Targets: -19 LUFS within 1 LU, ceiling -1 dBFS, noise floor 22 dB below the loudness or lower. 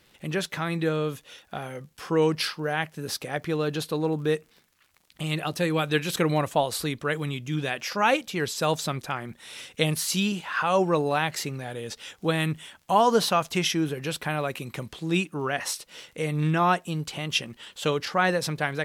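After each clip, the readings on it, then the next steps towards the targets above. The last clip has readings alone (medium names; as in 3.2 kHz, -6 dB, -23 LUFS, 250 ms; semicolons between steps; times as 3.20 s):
tick rate 47 per s; loudness -27.0 LUFS; peak level -6.0 dBFS; loudness target -19.0 LUFS
-> de-click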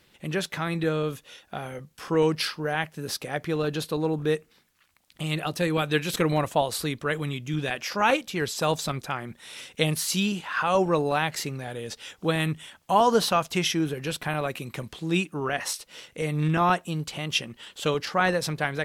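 tick rate 0.27 per s; loudness -27.0 LUFS; peak level -6.0 dBFS; loudness target -19.0 LUFS
-> trim +8 dB; peak limiter -1 dBFS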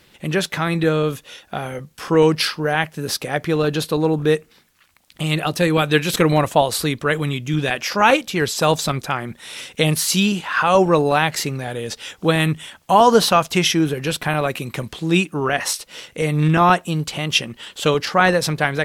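loudness -19.0 LUFS; peak level -1.0 dBFS; noise floor -54 dBFS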